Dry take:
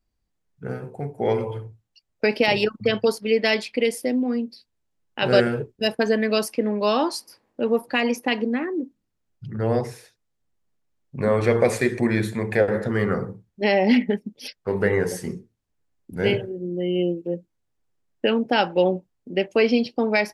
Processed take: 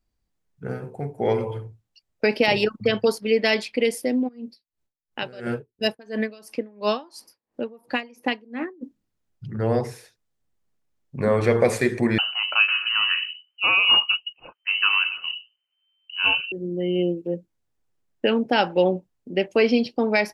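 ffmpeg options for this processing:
ffmpeg -i in.wav -filter_complex "[0:a]asplit=3[link_01][link_02][link_03];[link_01]afade=type=out:start_time=4.27:duration=0.02[link_04];[link_02]aeval=exprs='val(0)*pow(10,-27*(0.5-0.5*cos(2*PI*2.9*n/s))/20)':channel_layout=same,afade=type=in:start_time=4.27:duration=0.02,afade=type=out:start_time=8.81:duration=0.02[link_05];[link_03]afade=type=in:start_time=8.81:duration=0.02[link_06];[link_04][link_05][link_06]amix=inputs=3:normalize=0,asettb=1/sr,asplit=3[link_07][link_08][link_09];[link_07]atrim=end=12.184[link_10];[link_08]atrim=start=12.18:end=16.52,asetpts=PTS-STARTPTS,afade=type=in:duration=0.004:curve=qsin,afade=type=out:start_time=4.336:duration=0.004:curve=qsin,lowpass=frequency=2600:width_type=q:width=0.5098,lowpass=frequency=2600:width_type=q:width=0.6013,lowpass=frequency=2600:width_type=q:width=0.9,lowpass=frequency=2600:width_type=q:width=2.563,afreqshift=-3100[link_11];[link_09]atrim=start=16.516[link_12];[link_10][link_11]acrossfade=duration=0.004:curve1=hsin:curve2=qsin[link_13];[link_13][link_12]acrossfade=duration=0.004:curve1=qsin:curve2=hsin" out.wav

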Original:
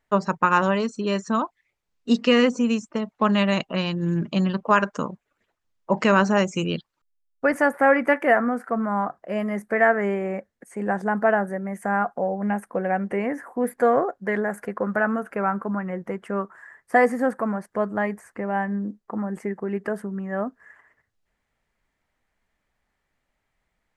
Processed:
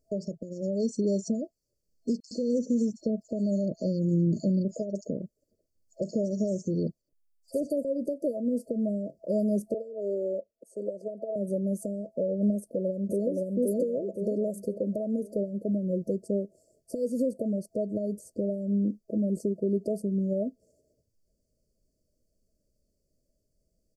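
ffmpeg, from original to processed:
ffmpeg -i in.wav -filter_complex "[0:a]asettb=1/sr,asplit=3[link_01][link_02][link_03];[link_01]atrim=end=2.204[link_04];[link_02]atrim=start=2.2:end=7.85,asetpts=PTS-STARTPTS,afade=type=in:duration=0.004:curve=qsin,afade=type=out:start_time=5.646:duration=0.004:curve=qsin,acrossover=split=1600|5700[link_05][link_06][link_07];[link_06]adelay=70[link_08];[link_05]adelay=110[link_09];[link_09][link_08][link_07]amix=inputs=3:normalize=0,atrim=end_sample=249165[link_10];[link_03]atrim=start=7.846[link_11];[link_04][link_10]acrossfade=duration=0.004:curve1=hsin:curve2=qsin[link_12];[link_12][link_11]acrossfade=duration=0.004:curve1=qsin:curve2=hsin,asettb=1/sr,asplit=3[link_13][link_14][link_15];[link_13]atrim=end=9.744[link_16];[link_14]atrim=start=9.74:end=11.36,asetpts=PTS-STARTPTS,afade=type=in:duration=0.004:curve=qsin,afade=type=out:start_time=1.616:duration=0.004:curve=qsin,acrossover=split=430 2400:gain=0.112 1 0.251[link_17][link_18][link_19];[link_17][link_18][link_19]amix=inputs=3:normalize=0[link_20];[link_15]atrim=start=11.356[link_21];[link_16][link_20]acrossfade=duration=0.004:curve1=hsin:curve2=qsin[link_22];[link_22][link_21]acrossfade=duration=0.004:curve1=qsin:curve2=hsin,asplit=2[link_23][link_24];[link_24]afade=type=in:start_time=12.57:duration=0.01,afade=type=out:start_time=13.32:duration=0.01,aecho=0:1:520|1040|1560|2080|2600:0.841395|0.336558|0.134623|0.0538493|0.0215397[link_25];[link_23][link_25]amix=inputs=2:normalize=0,acompressor=threshold=-22dB:ratio=4,alimiter=limit=-20.5dB:level=0:latency=1:release=296,afftfilt=real='re*(1-between(b*sr/4096,660,4300))':imag='im*(1-between(b*sr/4096,660,4300))':win_size=4096:overlap=0.75,volume=3dB" out.wav

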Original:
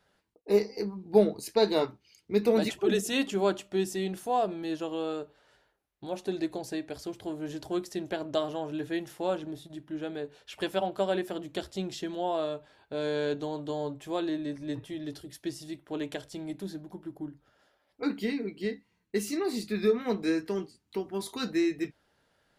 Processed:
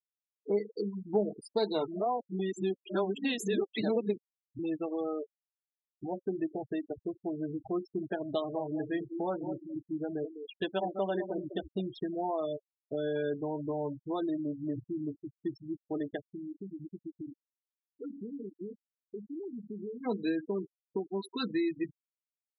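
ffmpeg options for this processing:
ffmpeg -i in.wav -filter_complex "[0:a]asettb=1/sr,asplit=3[link_01][link_02][link_03];[link_01]atrim=end=8.214[link_04];[link_02]atrim=start=8.21:end=11.89,asetpts=PTS-STARTPTS,afade=type=in:duration=0.004:curve=qsin,afade=type=out:start_time=3.676:duration=0.004:curve=qsin,asplit=2[link_05][link_06];[link_06]adelay=204,lowpass=frequency=1700:poles=1,volume=-9.5dB,asplit=2[link_07][link_08];[link_08]adelay=204,lowpass=frequency=1700:poles=1,volume=0.18,asplit=2[link_09][link_10];[link_10]adelay=204,lowpass=frequency=1700:poles=1,volume=0.18[link_11];[link_05][link_07][link_09][link_11]amix=inputs=4:normalize=0,atrim=end_sample=162288[link_12];[link_03]atrim=start=11.886[link_13];[link_04][link_12]acrossfade=duration=0.004:curve1=hsin:curve2=qsin[link_14];[link_14][link_13]acrossfade=duration=0.004:curve1=qsin:curve2=hsin,asplit=3[link_15][link_16][link_17];[link_15]afade=type=out:start_time=16.2:duration=0.02[link_18];[link_16]acompressor=threshold=-40dB:ratio=8:attack=3.2:release=140:knee=1:detection=peak,afade=type=in:start_time=16.2:duration=0.02,afade=type=out:start_time=20.02:duration=0.02[link_19];[link_17]afade=type=in:start_time=20.02:duration=0.02[link_20];[link_18][link_19][link_20]amix=inputs=3:normalize=0,asplit=3[link_21][link_22][link_23];[link_21]atrim=end=1.882[link_24];[link_22]atrim=start=1.878:end=4.592,asetpts=PTS-STARTPTS,areverse[link_25];[link_23]atrim=start=4.588[link_26];[link_24][link_25]acrossfade=duration=0.004:curve1=hsin:curve2=hsin[link_27];[link_27][link_26]acrossfade=duration=0.004:curve1=hsin:curve2=hsin,afftfilt=real='re*gte(hypot(re,im),0.0316)':imag='im*gte(hypot(re,im),0.0316)':win_size=1024:overlap=0.75,bandreject=frequency=540:width=12,acompressor=threshold=-37dB:ratio=2,volume=3.5dB" out.wav

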